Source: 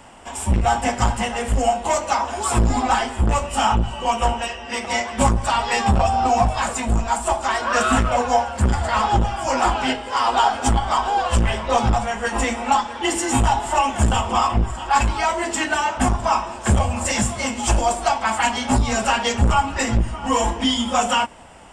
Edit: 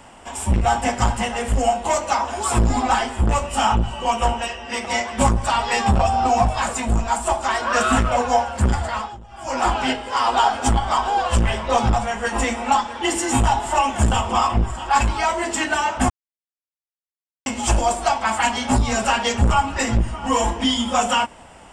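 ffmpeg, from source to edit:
-filter_complex "[0:a]asplit=5[s0][s1][s2][s3][s4];[s0]atrim=end=9.16,asetpts=PTS-STARTPTS,afade=t=out:st=8.74:d=0.42:silence=0.0749894[s5];[s1]atrim=start=9.16:end=9.28,asetpts=PTS-STARTPTS,volume=0.075[s6];[s2]atrim=start=9.28:end=16.1,asetpts=PTS-STARTPTS,afade=t=in:d=0.42:silence=0.0749894,afade=t=out:st=6.816:d=0.004:c=hsin[s7];[s3]atrim=start=16.1:end=17.46,asetpts=PTS-STARTPTS,volume=0[s8];[s4]atrim=start=17.46,asetpts=PTS-STARTPTS,afade=t=in:d=0.004:c=hsin[s9];[s5][s6][s7][s8][s9]concat=n=5:v=0:a=1"

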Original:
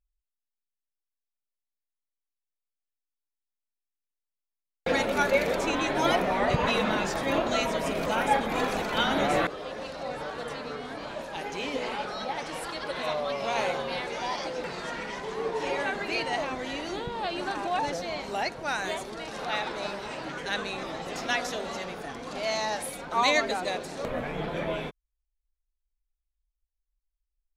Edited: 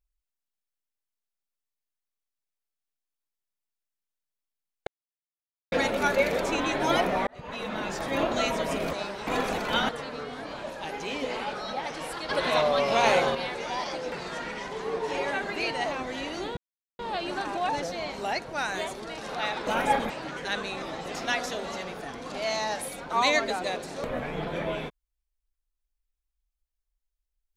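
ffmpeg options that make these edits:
-filter_complex "[0:a]asplit=11[s0][s1][s2][s3][s4][s5][s6][s7][s8][s9][s10];[s0]atrim=end=4.87,asetpts=PTS-STARTPTS,afade=t=out:st=4.866:d=0.004:c=hsin,apad=pad_dur=0.85[s11];[s1]atrim=start=4.87:end=6.42,asetpts=PTS-STARTPTS,afade=t=in:d=0.004:c=hsin,afade=t=out:st=1.546:d=0.004:c=hsin[s12];[s2]atrim=start=6.42:end=8.082,asetpts=PTS-STARTPTS,afade=t=in:d=0.98[s13];[s3]atrim=start=19.768:end=20.112[s14];[s4]atrim=start=8.508:end=9.132[s15];[s5]atrim=start=10.408:end=12.812[s16];[s6]atrim=start=12.808:end=13.872,asetpts=PTS-STARTPTS,volume=2.11[s17];[s7]atrim=start=13.868:end=17.09,asetpts=PTS-STARTPTS,afade=t=out:st=3.218:d=0.004:c=hsin,apad=pad_dur=0.42[s18];[s8]atrim=start=17.09:end=19.772,asetpts=PTS-STARTPTS,afade=t=in:d=0.004:c=hsin[s19];[s9]atrim=start=8.078:end=8.512[s20];[s10]atrim=start=20.108[s21];[s11][s12][s13]concat=n=3:v=0:a=1[s22];[s22][s14]acrossfade=d=0.004:c1=hsin:c2=hsin[s23];[s23][s15]acrossfade=d=0.004:c1=hsin:c2=hsin[s24];[s24][s16]acrossfade=d=0.004:c1=hsin:c2=hsin[s25];[s25][s17]acrossfade=d=0.004:c1=hsin:c2=hsin[s26];[s18][s19]concat=n=2:v=0:a=1[s27];[s26][s27]acrossfade=d=0.004:c1=hsin:c2=hsin[s28];[s28][s20]acrossfade=d=0.004:c1=hsin:c2=hsin[s29];[s29][s21]acrossfade=d=0.004:c1=hsin:c2=hsin"

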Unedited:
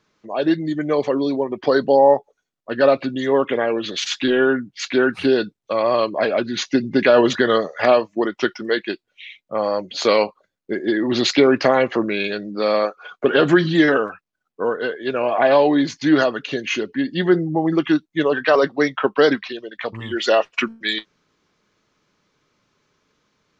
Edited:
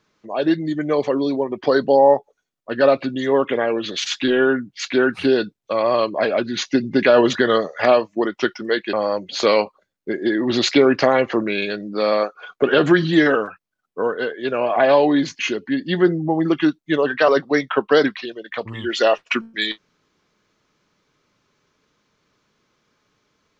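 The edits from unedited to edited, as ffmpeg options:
-filter_complex "[0:a]asplit=3[s0][s1][s2];[s0]atrim=end=8.932[s3];[s1]atrim=start=9.548:end=16.012[s4];[s2]atrim=start=16.658[s5];[s3][s4]acrossfade=d=0.004:c1=hsin:c2=hsin[s6];[s6][s5]acrossfade=d=0.004:c1=hsin:c2=hsin"

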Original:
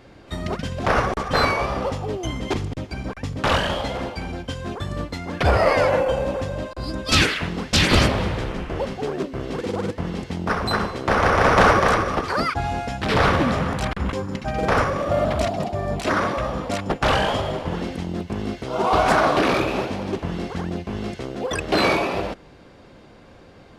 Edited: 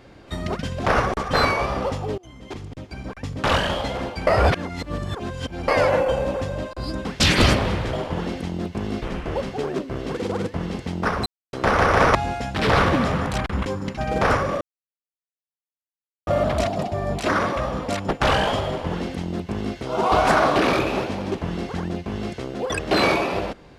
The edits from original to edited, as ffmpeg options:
-filter_complex "[0:a]asplit=11[s0][s1][s2][s3][s4][s5][s6][s7][s8][s9][s10];[s0]atrim=end=2.18,asetpts=PTS-STARTPTS,afade=t=out:st=2.176:d=0.004:c=hsin:silence=0.0668344[s11];[s1]atrim=start=2.18:end=4.272,asetpts=PTS-STARTPTS,afade=t=in:d=1.38:silence=0.0668344[s12];[s2]atrim=start=4.268:end=5.682,asetpts=PTS-STARTPTS,areverse[s13];[s3]atrim=start=5.678:end=7.052[s14];[s4]atrim=start=7.578:end=8.462[s15];[s5]atrim=start=17.478:end=18.572[s16];[s6]atrim=start=8.458:end=10.7,asetpts=PTS-STARTPTS,afade=t=out:st=2.238:d=0.004:c=hsin[s17];[s7]atrim=start=10.7:end=10.97,asetpts=PTS-STARTPTS,volume=0[s18];[s8]atrim=start=10.97:end=11.592,asetpts=PTS-STARTPTS,afade=t=in:d=0.004:c=hsin[s19];[s9]atrim=start=12.618:end=15.08,asetpts=PTS-STARTPTS,afade=t=out:st=2.458:d=0.004:c=hsin,apad=pad_dur=1.66[s20];[s10]atrim=start=15.08,asetpts=PTS-STARTPTS,afade=t=in:d=0.004:c=hsin[s21];[s11][s12]concat=n=2:v=0:a=1[s22];[s22][s13]acrossfade=d=0.004:c1=hsin:c2=hsin[s23];[s23][s14]acrossfade=d=0.004:c1=hsin:c2=hsin[s24];[s24][s15]acrossfade=d=0.004:c1=hsin:c2=hsin[s25];[s25][s16]acrossfade=d=0.004:c1=hsin:c2=hsin[s26];[s17][s18][s19]concat=n=3:v=0:a=1[s27];[s26][s27]acrossfade=d=0.004:c1=hsin:c2=hsin[s28];[s20][s21]concat=n=2:v=0:a=1[s29];[s28][s29]acrossfade=d=0.004:c1=hsin:c2=hsin"

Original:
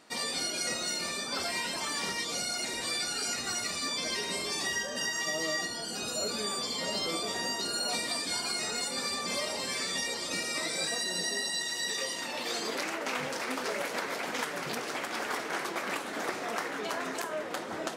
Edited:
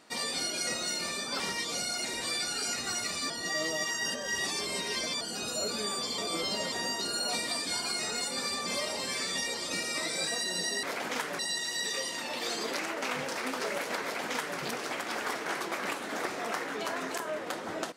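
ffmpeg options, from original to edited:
-filter_complex "[0:a]asplit=8[s0][s1][s2][s3][s4][s5][s6][s7];[s0]atrim=end=1.402[s8];[s1]atrim=start=1.998:end=3.902[s9];[s2]atrim=start=3.898:end=5.812,asetpts=PTS-STARTPTS,areverse[s10];[s3]atrim=start=5.808:end=6.782[s11];[s4]atrim=start=6.778:end=7.322,asetpts=PTS-STARTPTS,areverse[s12];[s5]atrim=start=7.318:end=11.432[s13];[s6]atrim=start=14.058:end=14.622[s14];[s7]atrim=start=11.428[s15];[s8][s9]acrossfade=d=0.004:c1=hsin:c2=hsin[s16];[s16][s10]acrossfade=d=0.004:c1=hsin:c2=hsin[s17];[s17][s11]acrossfade=d=0.004:c1=hsin:c2=hsin[s18];[s18][s12]acrossfade=d=0.004:c1=hsin:c2=hsin[s19];[s19][s13]acrossfade=d=0.004:c1=hsin:c2=hsin[s20];[s20][s14]acrossfade=d=0.004:c1=hsin:c2=hsin[s21];[s21][s15]acrossfade=d=0.004:c1=hsin:c2=hsin"

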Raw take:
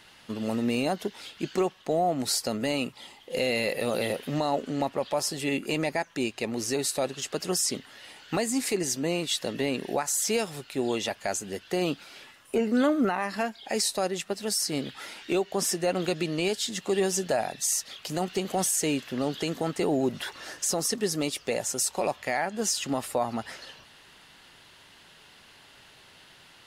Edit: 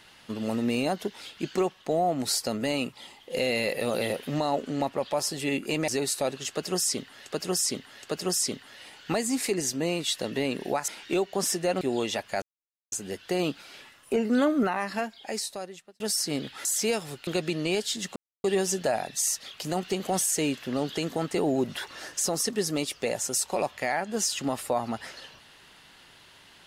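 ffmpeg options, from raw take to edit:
-filter_complex "[0:a]asplit=11[s0][s1][s2][s3][s4][s5][s6][s7][s8][s9][s10];[s0]atrim=end=5.882[s11];[s1]atrim=start=6.648:end=8.032[s12];[s2]atrim=start=7.258:end=8.032[s13];[s3]atrim=start=7.258:end=10.112[s14];[s4]atrim=start=15.068:end=16.002[s15];[s5]atrim=start=10.728:end=11.34,asetpts=PTS-STARTPTS,afade=t=out:st=0.608:d=0.004:c=hsin,apad=pad_dur=0.5[s16];[s6]atrim=start=11.34:end=14.42,asetpts=PTS-STARTPTS,afade=t=in:d=0.004:c=hsin,afade=t=out:st=1.95:d=1.13[s17];[s7]atrim=start=14.42:end=15.072,asetpts=PTS-STARTPTS,afade=t=in:d=0.004:c=hsin[s18];[s8]atrim=start=10.108:end=10.732[s19];[s9]atrim=start=15.998:end=16.89,asetpts=PTS-STARTPTS,afade=t=out:st=0.888:d=0.004:c=hsin,apad=pad_dur=0.28[s20];[s10]atrim=start=16.89,asetpts=PTS-STARTPTS,afade=t=in:d=0.004:c=hsin[s21];[s11][s12]acrossfade=d=0.004:c1=hsin:c2=hsin[s22];[s22][s13]acrossfade=d=0.004:c1=hsin:c2=hsin[s23];[s23][s14]acrossfade=d=0.004:c1=hsin:c2=hsin[s24];[s24][s15]acrossfade=d=0.004:c1=hsin:c2=hsin[s25];[s16][s17][s18]concat=n=3:v=0:a=1[s26];[s25][s26]acrossfade=d=0.004:c1=hsin:c2=hsin[s27];[s27][s19]acrossfade=d=0.004:c1=hsin:c2=hsin[s28];[s20][s21]concat=n=2:v=0:a=1[s29];[s28][s29]acrossfade=d=0.004:c1=hsin:c2=hsin"

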